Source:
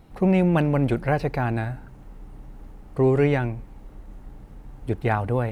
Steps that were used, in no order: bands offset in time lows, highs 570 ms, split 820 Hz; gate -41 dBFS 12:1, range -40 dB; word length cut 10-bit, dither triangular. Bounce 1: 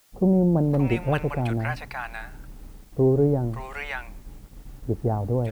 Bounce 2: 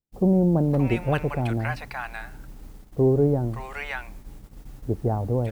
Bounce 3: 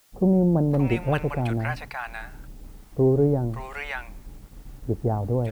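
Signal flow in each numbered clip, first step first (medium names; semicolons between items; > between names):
bands offset in time > gate > word length cut; bands offset in time > word length cut > gate; gate > bands offset in time > word length cut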